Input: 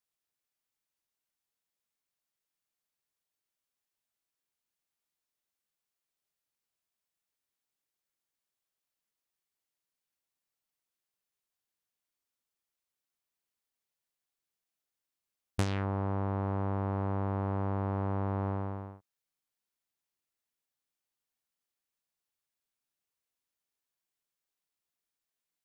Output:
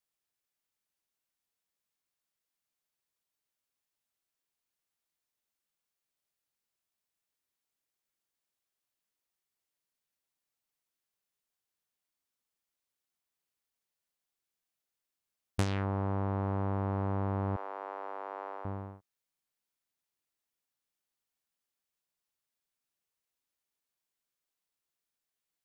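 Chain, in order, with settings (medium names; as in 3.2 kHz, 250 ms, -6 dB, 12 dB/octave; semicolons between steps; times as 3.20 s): 17.56–18.65 s: Bessel high-pass 630 Hz, order 6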